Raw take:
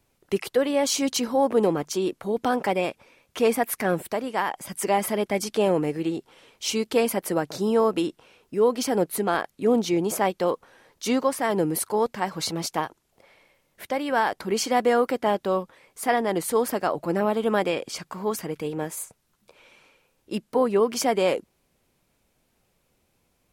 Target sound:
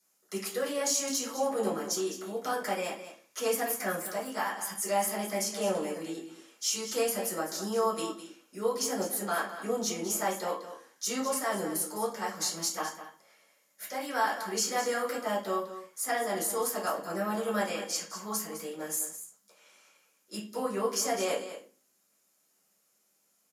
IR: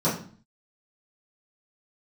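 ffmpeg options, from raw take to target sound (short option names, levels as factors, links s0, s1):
-filter_complex "[0:a]aderivative,acrossover=split=540[s0][s1];[s1]alimiter=limit=0.0708:level=0:latency=1:release=37[s2];[s0][s2]amix=inputs=2:normalize=0,aresample=32000,aresample=44100,aecho=1:1:207:0.266[s3];[1:a]atrim=start_sample=2205,asetrate=52920,aresample=44100[s4];[s3][s4]afir=irnorm=-1:irlink=0,volume=0.668"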